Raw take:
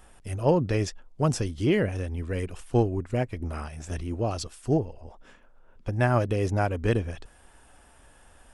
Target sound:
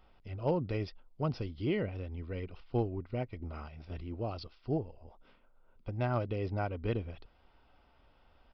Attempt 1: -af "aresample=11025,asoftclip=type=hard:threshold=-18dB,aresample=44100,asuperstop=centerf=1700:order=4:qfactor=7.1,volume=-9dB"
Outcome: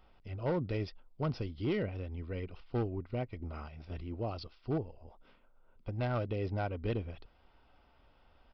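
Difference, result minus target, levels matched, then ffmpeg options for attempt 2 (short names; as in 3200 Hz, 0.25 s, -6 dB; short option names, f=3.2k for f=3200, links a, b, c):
hard clip: distortion +20 dB
-af "aresample=11025,asoftclip=type=hard:threshold=-12dB,aresample=44100,asuperstop=centerf=1700:order=4:qfactor=7.1,volume=-9dB"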